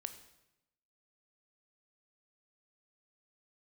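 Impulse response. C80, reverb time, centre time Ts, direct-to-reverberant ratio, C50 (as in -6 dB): 13.5 dB, 0.90 s, 10 ms, 8.5 dB, 11.5 dB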